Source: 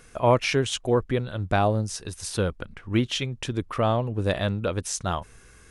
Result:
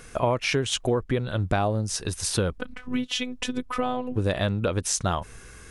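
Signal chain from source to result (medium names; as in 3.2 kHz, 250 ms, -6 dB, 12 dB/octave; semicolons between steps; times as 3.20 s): compression 5:1, threshold -27 dBFS, peak gain reduction 12 dB; 2.58–4.16 s: robot voice 250 Hz; trim +6 dB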